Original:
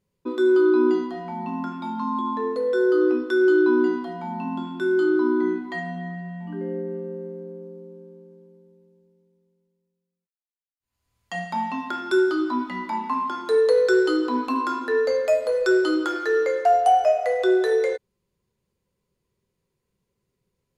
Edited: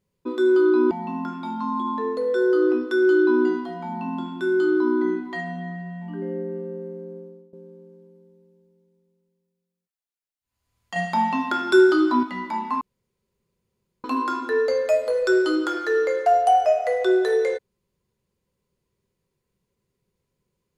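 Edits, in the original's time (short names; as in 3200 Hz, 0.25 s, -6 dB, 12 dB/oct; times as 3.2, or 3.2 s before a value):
0.91–1.3 cut
7.56–7.92 fade out, to -17.5 dB
11.35–12.62 gain +5 dB
13.2–14.43 room tone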